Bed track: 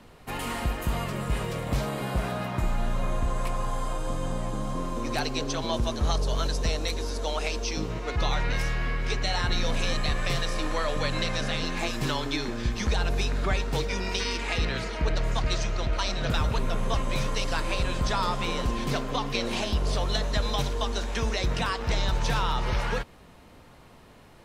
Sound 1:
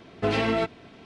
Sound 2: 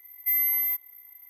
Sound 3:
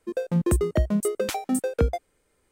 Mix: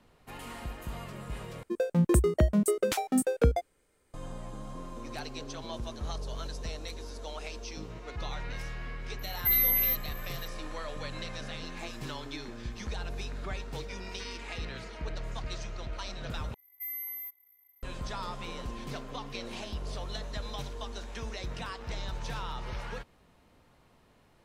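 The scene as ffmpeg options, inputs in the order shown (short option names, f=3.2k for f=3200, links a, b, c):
-filter_complex "[2:a]asplit=2[a][b];[0:a]volume=-11dB,asplit=3[c][d][e];[c]atrim=end=1.634[f];[3:a]atrim=end=2.51,asetpts=PTS-STARTPTS,volume=-1.5dB[g];[d]atrim=start=4.136:end=16.544[h];[b]atrim=end=1.29,asetpts=PTS-STARTPTS,volume=-14dB[i];[e]atrim=start=17.826[j];[a]atrim=end=1.29,asetpts=PTS-STARTPTS,volume=-1dB,afade=t=in:d=0.004:c=hsin,afade=t=out:st=1.286:d=0.004:c=hsin,adelay=9190[k];[f][g]acrossfade=d=0.004:c1=hsin:c2=hsin[l];[l][h]acrossfade=d=0.004:c1=hsin:c2=hsin[m];[m][i]acrossfade=d=0.004:c1=hsin:c2=hsin[n];[n][j]acrossfade=d=0.004:c1=hsin:c2=hsin[o];[o][k]amix=inputs=2:normalize=0"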